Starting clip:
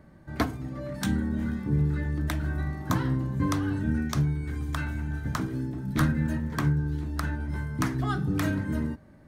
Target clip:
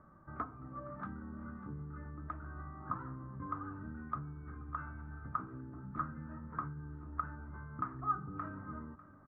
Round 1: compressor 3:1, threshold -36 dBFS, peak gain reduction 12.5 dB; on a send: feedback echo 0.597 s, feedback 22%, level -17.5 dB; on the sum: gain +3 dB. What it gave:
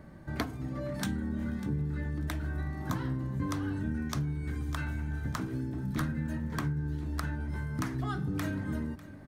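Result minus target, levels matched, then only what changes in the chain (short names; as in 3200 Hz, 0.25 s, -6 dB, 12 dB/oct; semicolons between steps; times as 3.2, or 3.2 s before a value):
1000 Hz band -11.0 dB
add after compressor: ladder low-pass 1300 Hz, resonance 85%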